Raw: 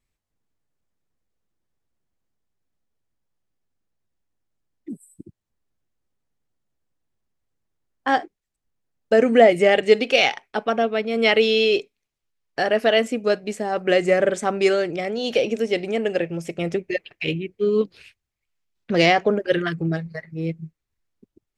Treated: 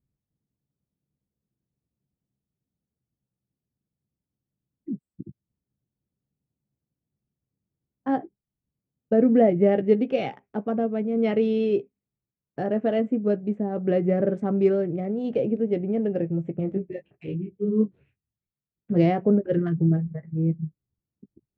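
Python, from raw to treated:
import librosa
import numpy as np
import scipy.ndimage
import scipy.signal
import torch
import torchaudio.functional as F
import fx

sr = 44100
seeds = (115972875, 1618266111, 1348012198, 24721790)

y = fx.wiener(x, sr, points=9)
y = fx.bandpass_q(y, sr, hz=150.0, q=1.3)
y = fx.doubler(y, sr, ms=15.0, db=-11.5)
y = fx.detune_double(y, sr, cents=fx.line((16.59, 23.0), (18.95, 41.0)), at=(16.59, 18.95), fade=0.02)
y = y * 10.0 ** (7.0 / 20.0)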